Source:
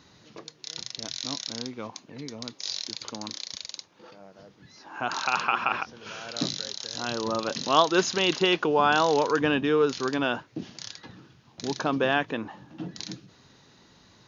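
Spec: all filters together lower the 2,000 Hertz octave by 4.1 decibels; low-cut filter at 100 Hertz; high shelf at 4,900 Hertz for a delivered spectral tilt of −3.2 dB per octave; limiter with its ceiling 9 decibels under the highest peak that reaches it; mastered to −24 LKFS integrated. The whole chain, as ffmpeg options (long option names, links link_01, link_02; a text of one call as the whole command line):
ffmpeg -i in.wav -af "highpass=100,equalizer=frequency=2000:width_type=o:gain=-7,highshelf=frequency=4900:gain=4,volume=6dB,alimiter=limit=-9dB:level=0:latency=1" out.wav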